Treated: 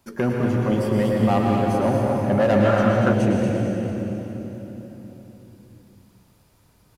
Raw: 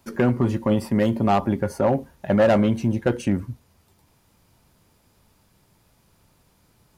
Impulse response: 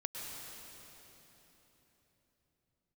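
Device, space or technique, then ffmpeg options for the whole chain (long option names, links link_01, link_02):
cave: -filter_complex "[0:a]aecho=1:1:236:0.398[link_01];[1:a]atrim=start_sample=2205[link_02];[link_01][link_02]afir=irnorm=-1:irlink=0,asettb=1/sr,asplit=3[link_03][link_04][link_05];[link_03]atrim=end=2.654[link_06];[link_04]atrim=start=2.65:end=3.13,asetpts=PTS-STARTPTS,afade=type=in:duration=0.004:curve=qsin,afade=type=out:start_time=0.476:duration=0.004:curve=qsin,equalizer=frequency=1300:width_type=o:width=0.67:gain=10.5[link_07];[link_05]atrim=start=3.126[link_08];[link_06][link_07]acrossfade=duration=0.004:curve1=hsin:curve2=qsin[link_09];[link_09][link_08]acrossfade=duration=0.004:curve1=qsin:curve2=hsin"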